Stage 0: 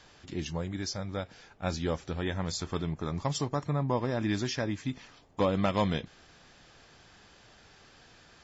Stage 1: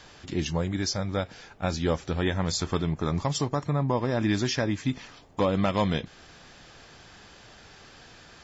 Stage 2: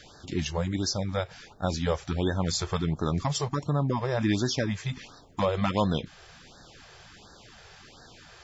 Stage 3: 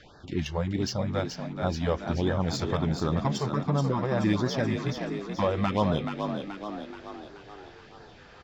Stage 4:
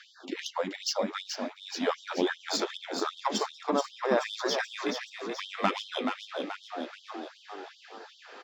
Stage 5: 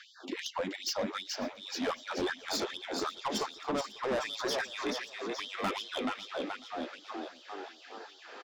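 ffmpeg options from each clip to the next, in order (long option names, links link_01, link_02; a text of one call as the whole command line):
ffmpeg -i in.wav -af "alimiter=limit=-21.5dB:level=0:latency=1:release=336,volume=6.5dB" out.wav
ffmpeg -i in.wav -af "afftfilt=real='re*(1-between(b*sr/1024,220*pow(2600/220,0.5+0.5*sin(2*PI*1.4*pts/sr))/1.41,220*pow(2600/220,0.5+0.5*sin(2*PI*1.4*pts/sr))*1.41))':imag='im*(1-between(b*sr/1024,220*pow(2600/220,0.5+0.5*sin(2*PI*1.4*pts/sr))/1.41,220*pow(2600/220,0.5+0.5*sin(2*PI*1.4*pts/sr))*1.41))':win_size=1024:overlap=0.75" out.wav
ffmpeg -i in.wav -filter_complex "[0:a]adynamicsmooth=sensitivity=1.5:basefreq=3700,asplit=8[link_01][link_02][link_03][link_04][link_05][link_06][link_07][link_08];[link_02]adelay=429,afreqshift=50,volume=-6.5dB[link_09];[link_03]adelay=858,afreqshift=100,volume=-11.9dB[link_10];[link_04]adelay=1287,afreqshift=150,volume=-17.2dB[link_11];[link_05]adelay=1716,afreqshift=200,volume=-22.6dB[link_12];[link_06]adelay=2145,afreqshift=250,volume=-27.9dB[link_13];[link_07]adelay=2574,afreqshift=300,volume=-33.3dB[link_14];[link_08]adelay=3003,afreqshift=350,volume=-38.6dB[link_15];[link_01][link_09][link_10][link_11][link_12][link_13][link_14][link_15]amix=inputs=8:normalize=0" out.wav
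ffmpeg -i in.wav -af "afftfilt=real='re*gte(b*sr/1024,200*pow(3000/200,0.5+0.5*sin(2*PI*2.6*pts/sr)))':imag='im*gte(b*sr/1024,200*pow(3000/200,0.5+0.5*sin(2*PI*2.6*pts/sr)))':win_size=1024:overlap=0.75,volume=4dB" out.wav
ffmpeg -i in.wav -af "asoftclip=type=tanh:threshold=-27dB,aecho=1:1:546|1092|1638:0.0794|0.0286|0.0103" out.wav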